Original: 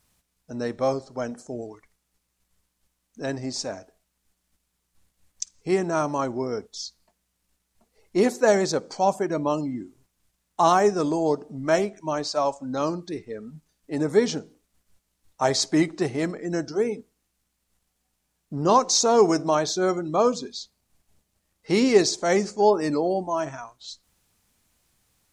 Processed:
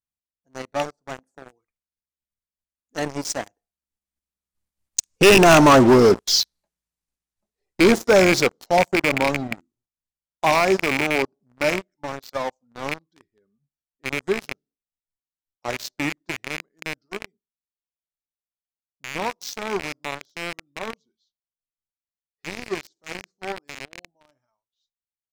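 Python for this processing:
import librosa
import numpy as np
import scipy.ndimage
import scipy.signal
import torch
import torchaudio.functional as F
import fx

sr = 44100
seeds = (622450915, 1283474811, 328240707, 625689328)

y = fx.rattle_buzz(x, sr, strikes_db=-31.0, level_db=-10.0)
y = fx.doppler_pass(y, sr, speed_mps=28, closest_m=12.0, pass_at_s=5.8)
y = fx.leveller(y, sr, passes=5)
y = y * librosa.db_to_amplitude(3.0)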